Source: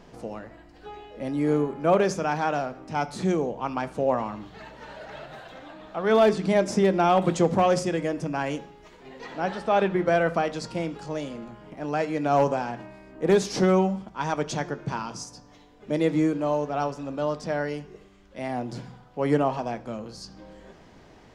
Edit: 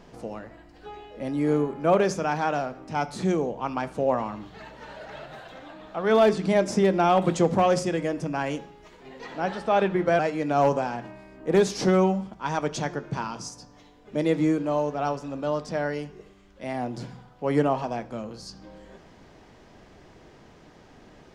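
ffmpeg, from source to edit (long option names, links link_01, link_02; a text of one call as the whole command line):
ffmpeg -i in.wav -filter_complex "[0:a]asplit=2[link_01][link_02];[link_01]atrim=end=10.192[link_03];[link_02]atrim=start=11.938[link_04];[link_03][link_04]acrossfade=duration=0.004:curve1=hsin:curve2=hsin" out.wav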